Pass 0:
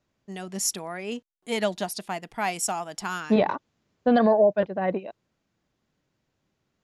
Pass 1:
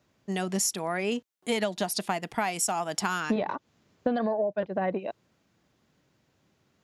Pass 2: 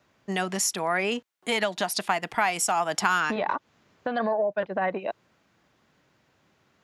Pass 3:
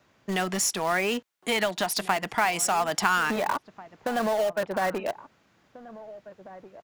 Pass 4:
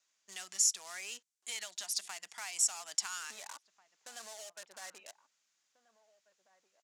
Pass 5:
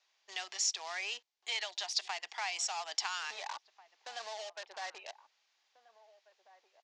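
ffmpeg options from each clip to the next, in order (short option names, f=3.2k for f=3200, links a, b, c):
-af "highpass=61,acompressor=threshold=-31dB:ratio=16,volume=7dB"
-filter_complex "[0:a]equalizer=f=1.4k:t=o:w=2.9:g=7.5,acrossover=split=780|1600[a][b][c];[a]alimiter=limit=-22dB:level=0:latency=1:release=240[d];[d][b][c]amix=inputs=3:normalize=0"
-filter_complex "[0:a]asplit=2[a][b];[b]aeval=exprs='(mod(16.8*val(0)+1,2)-1)/16.8':c=same,volume=-11dB[c];[a][c]amix=inputs=2:normalize=0,asplit=2[d][e];[e]adelay=1691,volume=-16dB,highshelf=f=4k:g=-38[f];[d][f]amix=inputs=2:normalize=0"
-af "bandpass=f=7k:t=q:w=2.1:csg=0"
-af "highpass=f=380:w=0.5412,highpass=f=380:w=1.3066,equalizer=f=530:t=q:w=4:g=-3,equalizer=f=810:t=q:w=4:g=6,equalizer=f=1.4k:t=q:w=4:g=-5,lowpass=f=4.9k:w=0.5412,lowpass=f=4.9k:w=1.3066,volume=7dB"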